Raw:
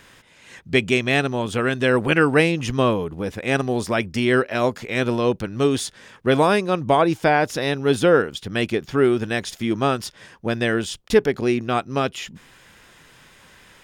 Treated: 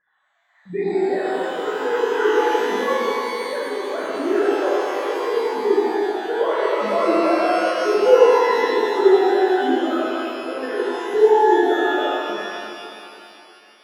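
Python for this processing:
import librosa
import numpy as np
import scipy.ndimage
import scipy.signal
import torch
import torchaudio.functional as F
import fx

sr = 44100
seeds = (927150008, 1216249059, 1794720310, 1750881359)

y = fx.sine_speech(x, sr)
y = np.convolve(y, np.full(16, 1.0 / 16))[:len(y)]
y = fx.rev_shimmer(y, sr, seeds[0], rt60_s=2.8, semitones=12, shimmer_db=-8, drr_db=-11.0)
y = y * librosa.db_to_amplitude(-9.5)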